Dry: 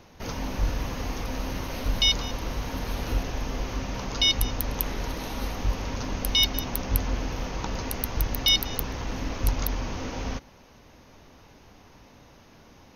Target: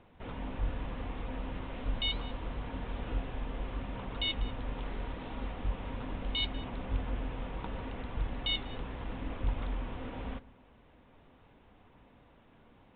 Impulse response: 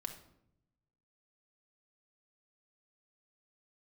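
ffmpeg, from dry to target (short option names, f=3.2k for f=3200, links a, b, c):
-filter_complex "[0:a]aresample=8000,aresample=44100,asplit=2[a][b];[1:a]atrim=start_sample=2205,lowpass=2.1k[c];[b][c]afir=irnorm=-1:irlink=0,volume=-8.5dB[d];[a][d]amix=inputs=2:normalize=0,flanger=delay=0.1:depth=7.9:regen=-77:speed=0.75:shape=sinusoidal,volume=-5.5dB"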